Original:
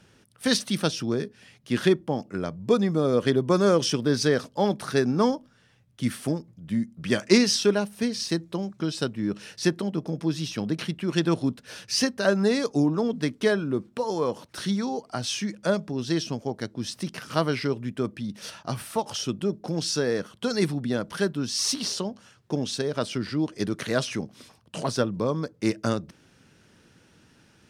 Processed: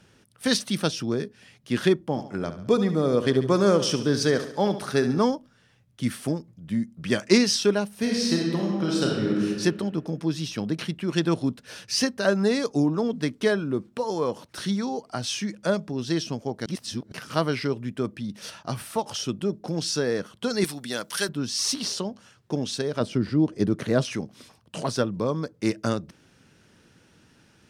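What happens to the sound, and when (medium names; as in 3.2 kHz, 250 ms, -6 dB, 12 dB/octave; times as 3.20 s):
2.05–5.19 s: feedback delay 70 ms, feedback 51%, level -11.5 dB
7.96–9.48 s: reverb throw, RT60 1.6 s, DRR -2.5 dB
16.66–17.12 s: reverse
20.64–21.29 s: tilt EQ +4 dB/octave
23.00–24.05 s: tilt shelf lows +6 dB, about 900 Hz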